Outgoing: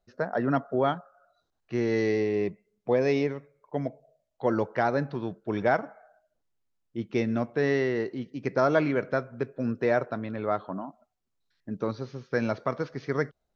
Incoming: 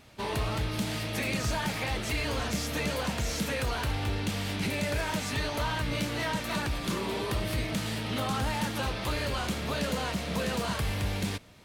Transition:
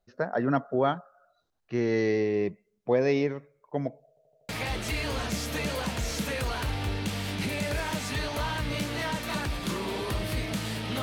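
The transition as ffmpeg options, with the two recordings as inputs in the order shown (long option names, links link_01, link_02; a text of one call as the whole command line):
ffmpeg -i cue0.wav -i cue1.wav -filter_complex "[0:a]apad=whole_dur=11.02,atrim=end=11.02,asplit=5[link_01][link_02][link_03][link_04][link_05];[link_01]atrim=end=4.172[link_06];[link_02]atrim=start=4.088:end=4.172[link_07];[link_03]atrim=start=4.088:end=4.172[link_08];[link_04]atrim=start=4.088:end=4.172[link_09];[link_05]atrim=start=4.088:end=4.172[link_10];[1:a]atrim=start=1.698:end=8.23[link_11];[link_06][link_07]acrossfade=duration=0.004:curve1=hsin:curve2=hsin[link_12];[link_12][link_08]acrossfade=duration=0.004:curve1=hsin:curve2=hsin[link_13];[link_13][link_09]acrossfade=duration=0.004:curve1=hsin:curve2=hsin[link_14];[link_14][link_10]acrossfade=duration=0.004:curve1=hsin:curve2=hsin[link_15];[link_15][link_11]acrossfade=duration=0.004:curve1=hsin:curve2=hsin" out.wav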